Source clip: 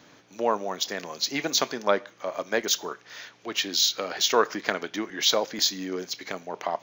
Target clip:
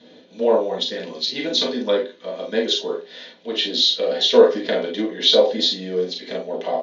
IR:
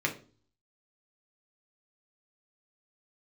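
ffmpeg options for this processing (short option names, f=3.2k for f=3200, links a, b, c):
-filter_complex "[0:a]asettb=1/sr,asplit=3[a][b][c];[a]atrim=end=0.714[d];[b]atrim=start=0.71:end=2.76,asetpts=PTS-STARTPTS,afade=t=in:d=0.004:c=qsin,afade=t=out:st=2.046:d=0.004:c=qsin,equalizer=f=610:t=o:w=0.84:g=-8.5[e];[c]atrim=start=2.756[f];[d][e]acrossfade=d=0.004:c1=hsin:c2=qsin[g];[g][f]acrossfade=d=0.004:c1=qsin:c2=hsin,aecho=1:1:37|49:0.501|0.398[h];[1:a]atrim=start_sample=2205,asetrate=74970,aresample=44100[i];[h][i]afir=irnorm=-1:irlink=0,aresample=22050,aresample=44100,equalizer=f=125:t=o:w=1:g=-3,equalizer=f=250:t=o:w=1:g=6,equalizer=f=500:t=o:w=1:g=11,equalizer=f=1k:t=o:w=1:g=-4,equalizer=f=4k:t=o:w=1:g=8,equalizer=f=8k:t=o:w=1:g=-10,volume=-5dB"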